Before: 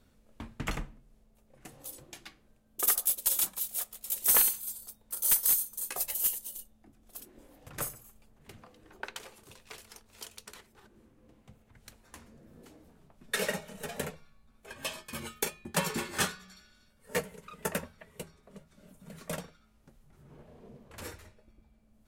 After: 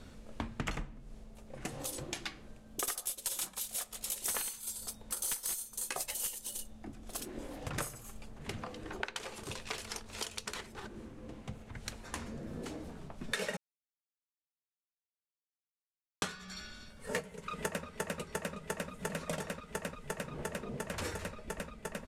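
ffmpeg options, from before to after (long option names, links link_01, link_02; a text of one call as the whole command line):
ffmpeg -i in.wav -filter_complex "[0:a]asplit=2[link_01][link_02];[link_02]afade=type=in:start_time=17.29:duration=0.01,afade=type=out:start_time=17.85:duration=0.01,aecho=0:1:350|700|1050|1400|1750|2100|2450|2800|3150|3500|3850|4200:0.749894|0.63741|0.541799|0.460529|0.391449|0.332732|0.282822|0.240399|0.204339|0.173688|0.147635|0.12549[link_03];[link_01][link_03]amix=inputs=2:normalize=0,asplit=3[link_04][link_05][link_06];[link_04]atrim=end=13.57,asetpts=PTS-STARTPTS,afade=type=out:start_time=13.566:duration=0.004:curve=hsin[link_07];[link_05]atrim=start=13.57:end=16.22,asetpts=PTS-STARTPTS,volume=0[link_08];[link_06]atrim=start=16.22,asetpts=PTS-STARTPTS,afade=type=in:duration=0.004:curve=hsin[link_09];[link_07][link_08][link_09]concat=n=3:v=0:a=1,lowpass=8800,acompressor=threshold=-49dB:ratio=5,volume=13dB" out.wav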